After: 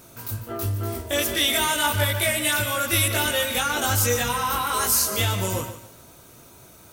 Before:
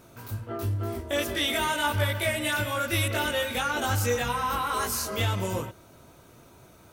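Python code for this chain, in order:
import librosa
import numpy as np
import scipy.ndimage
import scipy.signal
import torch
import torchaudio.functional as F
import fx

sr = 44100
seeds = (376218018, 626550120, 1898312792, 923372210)

y = fx.high_shelf(x, sr, hz=4300.0, db=10.5)
y = fx.echo_crushed(y, sr, ms=147, feedback_pct=35, bits=8, wet_db=-12.0)
y = F.gain(torch.from_numpy(y), 2.0).numpy()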